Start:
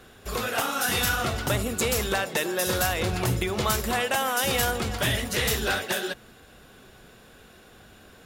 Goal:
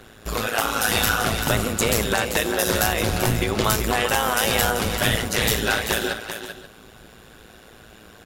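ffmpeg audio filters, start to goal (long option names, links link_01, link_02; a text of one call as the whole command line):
ffmpeg -i in.wav -af "tremolo=f=110:d=0.857,aecho=1:1:389|533:0.376|0.15,volume=7.5dB" out.wav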